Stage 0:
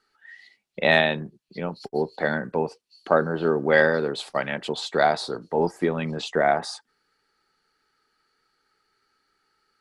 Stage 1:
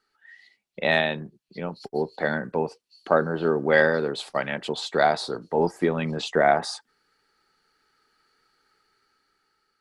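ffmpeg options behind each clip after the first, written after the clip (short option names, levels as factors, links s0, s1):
-af "dynaudnorm=f=460:g=7:m=3.35,volume=0.668"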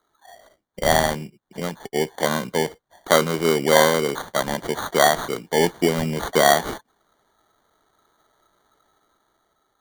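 -af "acrusher=samples=17:mix=1:aa=0.000001,volume=1.5"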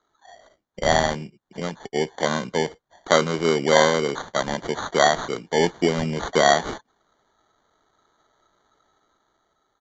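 -af "aresample=16000,aresample=44100,volume=0.891"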